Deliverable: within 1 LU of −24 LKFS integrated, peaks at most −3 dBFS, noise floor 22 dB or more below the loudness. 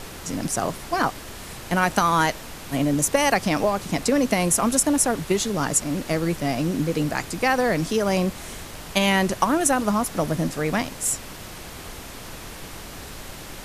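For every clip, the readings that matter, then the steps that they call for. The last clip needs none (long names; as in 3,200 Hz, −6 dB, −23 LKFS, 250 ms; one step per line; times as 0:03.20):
background noise floor −39 dBFS; target noise floor −45 dBFS; integrated loudness −22.5 LKFS; sample peak −4.5 dBFS; target loudness −24.0 LKFS
→ noise reduction from a noise print 6 dB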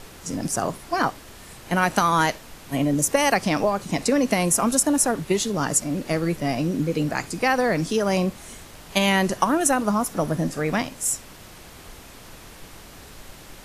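background noise floor −44 dBFS; target noise floor −45 dBFS
→ noise reduction from a noise print 6 dB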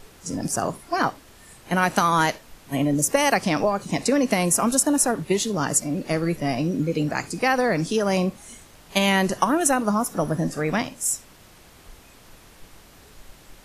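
background noise floor −50 dBFS; integrated loudness −22.5 LKFS; sample peak −4.5 dBFS; target loudness −24.0 LKFS
→ level −1.5 dB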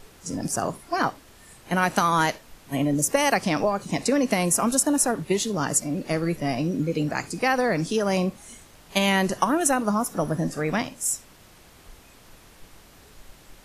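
integrated loudness −24.0 LKFS; sample peak −6.0 dBFS; background noise floor −52 dBFS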